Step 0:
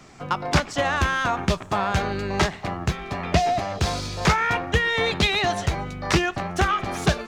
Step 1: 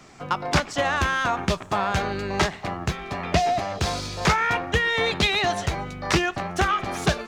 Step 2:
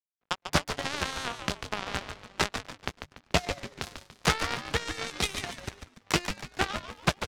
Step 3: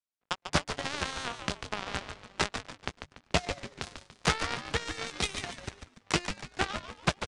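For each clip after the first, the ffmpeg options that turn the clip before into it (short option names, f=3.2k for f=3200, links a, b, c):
-af "lowshelf=f=200:g=-3.5"
-filter_complex "[0:a]aeval=exprs='sgn(val(0))*max(abs(val(0))-0.0299,0)':c=same,aeval=exprs='0.668*(cos(1*acos(clip(val(0)/0.668,-1,1)))-cos(1*PI/2))+0.0944*(cos(7*acos(clip(val(0)/0.668,-1,1)))-cos(7*PI/2))':c=same,asplit=5[a][b][c][d][e];[b]adelay=144,afreqshift=-150,volume=-8dB[f];[c]adelay=288,afreqshift=-300,volume=-16.2dB[g];[d]adelay=432,afreqshift=-450,volume=-24.4dB[h];[e]adelay=576,afreqshift=-600,volume=-32.5dB[i];[a][f][g][h][i]amix=inputs=5:normalize=0"
-af "aresample=22050,aresample=44100,volume=-2dB"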